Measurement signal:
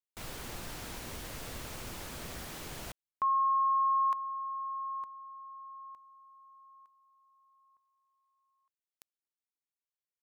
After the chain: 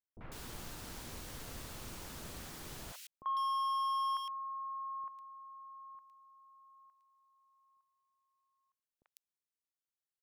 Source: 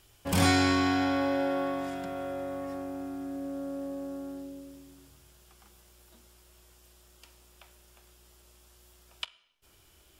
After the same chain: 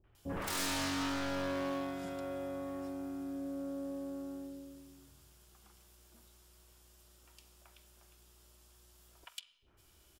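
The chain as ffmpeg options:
-filter_complex "[0:a]aeval=exprs='0.0473*(abs(mod(val(0)/0.0473+3,4)-2)-1)':c=same,acrossover=split=590|2200[a][b][c];[b]adelay=40[d];[c]adelay=150[e];[a][d][e]amix=inputs=3:normalize=0,volume=-3.5dB"

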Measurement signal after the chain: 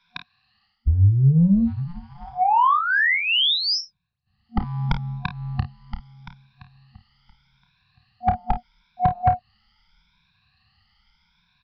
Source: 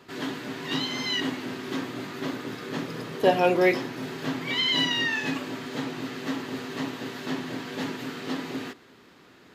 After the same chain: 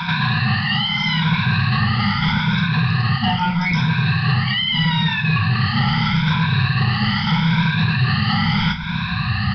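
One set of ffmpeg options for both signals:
-filter_complex "[0:a]afftfilt=real='re*pow(10,19/40*sin(2*PI*(1.6*log(max(b,1)*sr/1024/100)/log(2)-(0.79)*(pts-256)/sr)))':imag='im*pow(10,19/40*sin(2*PI*(1.6*log(max(b,1)*sr/1024/100)/log(2)-(0.79)*(pts-256)/sr)))':win_size=1024:overlap=0.75,afftfilt=real='re*(1-between(b*sr/4096,230,730))':imag='im*(1-between(b*sr/4096,230,730))':win_size=4096:overlap=0.75,asubboost=boost=6:cutoff=160,areverse,acompressor=threshold=-34dB:ratio=10,areverse,apsyclip=28.5dB,acrossover=split=120|600[a][b][c];[a]acompressor=threshold=-20dB:ratio=4[d];[b]acompressor=threshold=-22dB:ratio=4[e];[c]acompressor=threshold=-22dB:ratio=4[f];[d][e][f]amix=inputs=3:normalize=0,asoftclip=type=tanh:threshold=-8.5dB,aecho=1:1:30|52:0.355|0.224,aresample=11025,aresample=44100"

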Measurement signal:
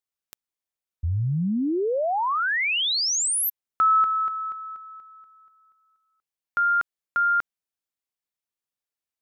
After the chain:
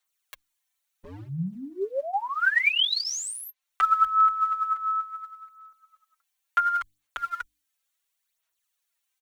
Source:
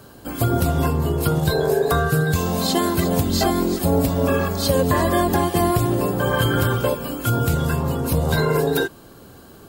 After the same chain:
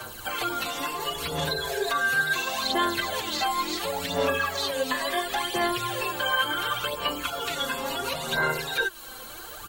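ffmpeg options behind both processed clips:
-filter_complex "[0:a]equalizer=f=190:w=0.49:g=-12.5,acrossover=split=130[a][b];[a]aeval=exprs='0.0126*(abs(mod(val(0)/0.0126+3,4)-2)-1)':c=same[c];[b]bandreject=f=5k:w=8[d];[c][d]amix=inputs=2:normalize=0,acrossover=split=3900[e][f];[f]acompressor=threshold=-40dB:ratio=4:attack=1:release=60[g];[e][g]amix=inputs=2:normalize=0,bandreject=f=50:t=h:w=6,bandreject=f=100:t=h:w=6,bandreject=f=150:t=h:w=6,bandreject=f=200:t=h:w=6,bandreject=f=250:t=h:w=6,bandreject=f=300:t=h:w=6,acrossover=split=110|2200|6200[h][i][j][k];[h]acompressor=threshold=-55dB:ratio=6[l];[i]acompressor=threshold=-40dB:ratio=3[m];[j]acompressor=threshold=-42dB:ratio=10[n];[k]acompressor=threshold=-54dB:ratio=6[o];[l][m][n][o]amix=inputs=4:normalize=0,aphaser=in_gain=1:out_gain=1:delay=3.9:decay=0.58:speed=0.71:type=sinusoidal,tiltshelf=f=640:g=-4.5,asplit=2[p][q];[q]adelay=6,afreqshift=-0.33[r];[p][r]amix=inputs=2:normalize=1,volume=9dB"

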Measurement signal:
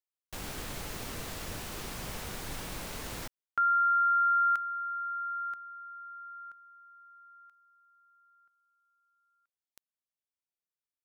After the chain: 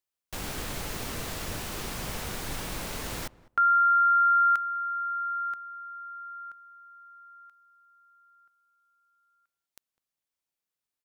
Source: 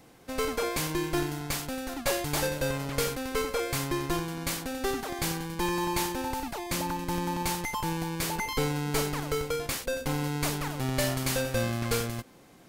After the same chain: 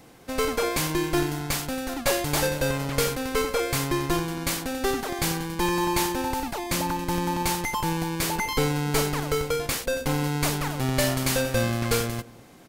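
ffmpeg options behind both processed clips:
-filter_complex "[0:a]asplit=2[a][b];[b]adelay=203,lowpass=f=1.1k:p=1,volume=-19.5dB,asplit=2[c][d];[d]adelay=203,lowpass=f=1.1k:p=1,volume=0.16[e];[a][c][e]amix=inputs=3:normalize=0,volume=4.5dB"

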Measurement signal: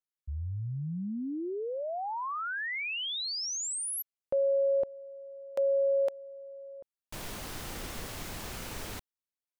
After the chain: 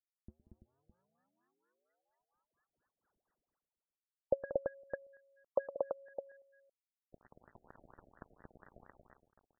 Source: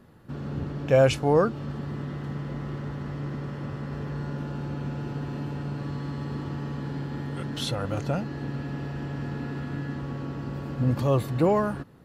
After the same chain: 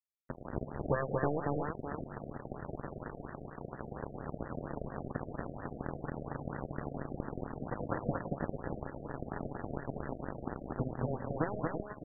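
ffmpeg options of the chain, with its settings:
-af "acompressor=threshold=-37dB:ratio=6:attack=44:release=155:knee=6:detection=peak,aresample=11025,acrusher=bits=4:mix=0:aa=0.5,aresample=44100,aeval=exprs='0.0794*(cos(1*acos(clip(val(0)/0.0794,-1,1)))-cos(1*PI/2))+0.0178*(cos(3*acos(clip(val(0)/0.0794,-1,1)))-cos(3*PI/2))':c=same,aecho=1:1:113|184|232|335|611:0.126|0.158|0.596|0.335|0.2,asoftclip=type=tanh:threshold=-28.5dB,lowpass=f=2.9k:t=q:w=1.5,afftfilt=real='re*lt(b*sr/1024,720*pow(2000/720,0.5+0.5*sin(2*PI*4.3*pts/sr)))':imag='im*lt(b*sr/1024,720*pow(2000/720,0.5+0.5*sin(2*PI*4.3*pts/sr)))':win_size=1024:overlap=0.75,volume=9dB"

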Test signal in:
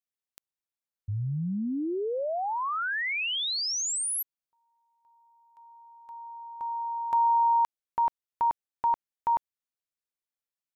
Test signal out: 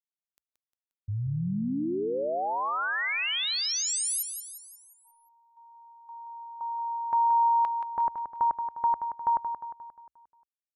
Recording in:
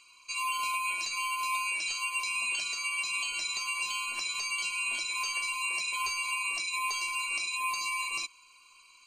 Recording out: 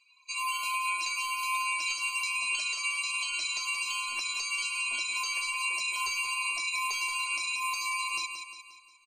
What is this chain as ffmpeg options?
-filter_complex "[0:a]afftdn=nr=18:nf=-50,equalizer=f=64:w=5.4:g=-7,asplit=2[a][b];[b]aecho=0:1:177|354|531|708|885|1062:0.398|0.195|0.0956|0.0468|0.023|0.0112[c];[a][c]amix=inputs=2:normalize=0"

